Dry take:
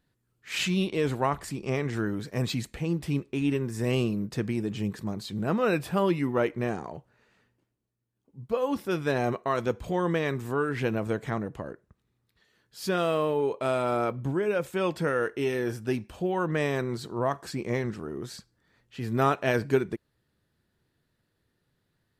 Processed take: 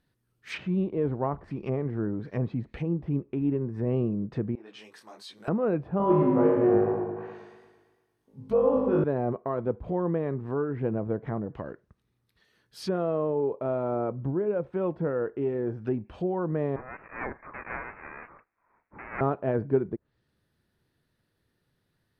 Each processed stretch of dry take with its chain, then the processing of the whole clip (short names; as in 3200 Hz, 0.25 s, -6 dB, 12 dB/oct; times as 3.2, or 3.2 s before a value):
4.55–5.48 HPF 700 Hz + detuned doubles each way 40 cents
5.98–9.04 flutter echo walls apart 3.3 m, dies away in 0.95 s + warbling echo 0.114 s, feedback 57%, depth 64 cents, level -7 dB
16.76–19.21 half-waves squared off + HPF 1200 Hz + inverted band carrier 2800 Hz
whole clip: treble ducked by the level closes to 790 Hz, closed at -27 dBFS; notch 7200 Hz, Q 5.8